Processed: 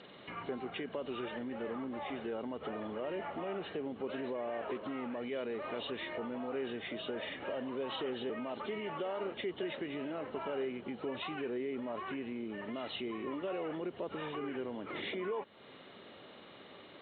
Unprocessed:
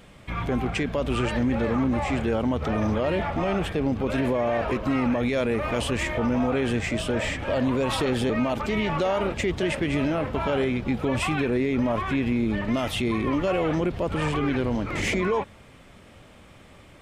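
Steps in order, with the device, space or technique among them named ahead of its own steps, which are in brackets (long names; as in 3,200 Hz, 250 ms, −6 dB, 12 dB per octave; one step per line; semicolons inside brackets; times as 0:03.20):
hearing aid with frequency lowering (hearing-aid frequency compression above 2,800 Hz 4 to 1; downward compressor 3 to 1, threshold −38 dBFS, peak gain reduction 13 dB; loudspeaker in its box 250–6,700 Hz, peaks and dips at 400 Hz +5 dB, 2,500 Hz −4 dB, 4,800 Hz +4 dB)
level −2 dB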